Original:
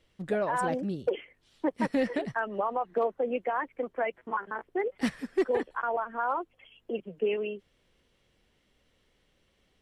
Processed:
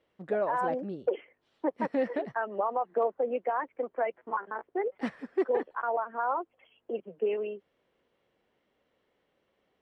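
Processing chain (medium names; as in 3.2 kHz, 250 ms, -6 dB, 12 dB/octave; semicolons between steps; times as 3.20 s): band-pass filter 680 Hz, Q 0.67; trim +1 dB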